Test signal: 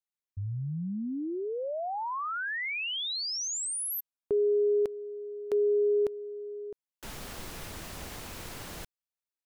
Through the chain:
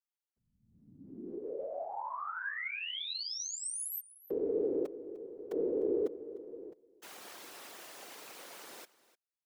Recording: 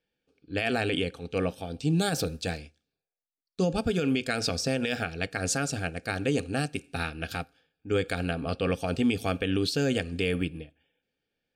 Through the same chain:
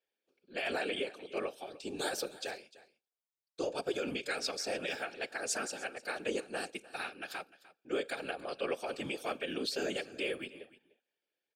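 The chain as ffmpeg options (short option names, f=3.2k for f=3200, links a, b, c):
-af "highpass=f=340:w=0.5412,highpass=f=340:w=1.3066,afftfilt=real='hypot(re,im)*cos(2*PI*random(0))':imag='hypot(re,im)*sin(2*PI*random(1))':win_size=512:overlap=0.75,aecho=1:1:301:0.112"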